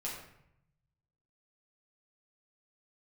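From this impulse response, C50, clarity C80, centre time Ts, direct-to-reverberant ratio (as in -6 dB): 3.5 dB, 6.0 dB, 45 ms, -5.5 dB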